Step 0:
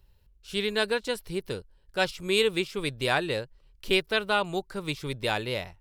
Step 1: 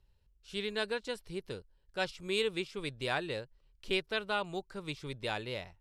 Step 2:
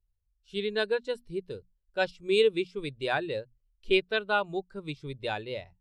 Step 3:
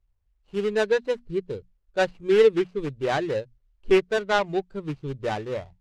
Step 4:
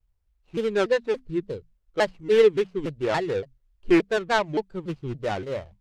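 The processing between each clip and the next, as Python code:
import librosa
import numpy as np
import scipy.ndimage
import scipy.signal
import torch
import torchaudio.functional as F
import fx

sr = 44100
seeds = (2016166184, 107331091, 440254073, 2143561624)

y1 = scipy.signal.sosfilt(scipy.signal.butter(2, 9000.0, 'lowpass', fs=sr, output='sos'), x)
y1 = F.gain(torch.from_numpy(y1), -8.0).numpy()
y2 = fx.high_shelf(y1, sr, hz=6200.0, db=5.0)
y2 = fx.hum_notches(y2, sr, base_hz=60, count=4)
y2 = fx.spectral_expand(y2, sr, expansion=1.5)
y2 = F.gain(torch.from_numpy(y2), 5.5).numpy()
y3 = scipy.ndimage.median_filter(y2, 25, mode='constant')
y3 = scipy.signal.sosfilt(scipy.signal.butter(2, 7100.0, 'lowpass', fs=sr, output='sos'), y3)
y3 = fx.dynamic_eq(y3, sr, hz=2000.0, q=2.5, threshold_db=-52.0, ratio=4.0, max_db=5)
y3 = F.gain(torch.from_numpy(y3), 7.0).numpy()
y4 = fx.vibrato_shape(y3, sr, shape='saw_down', rate_hz=3.5, depth_cents=250.0)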